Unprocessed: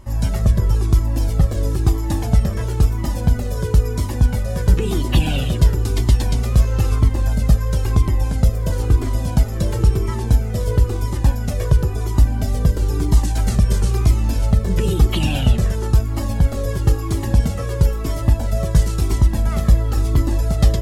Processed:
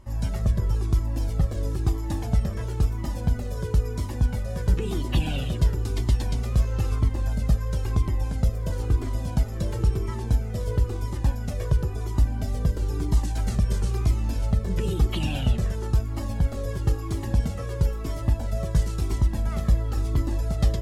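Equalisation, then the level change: treble shelf 8.7 kHz -5 dB; -7.5 dB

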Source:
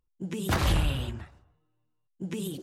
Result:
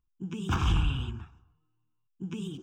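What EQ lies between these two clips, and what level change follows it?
peaking EQ 11 kHz -12.5 dB 1.2 oct; static phaser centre 2.9 kHz, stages 8; 0.0 dB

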